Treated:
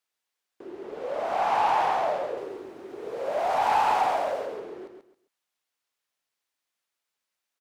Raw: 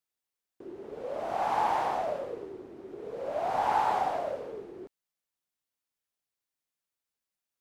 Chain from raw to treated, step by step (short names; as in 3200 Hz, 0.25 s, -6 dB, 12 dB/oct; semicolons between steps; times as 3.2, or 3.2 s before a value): 2.37–4.46 high shelf 7500 Hz +10 dB; short-mantissa float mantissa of 6-bit; overdrive pedal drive 13 dB, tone 4800 Hz, clips at -16 dBFS; feedback echo 0.136 s, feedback 23%, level -6.5 dB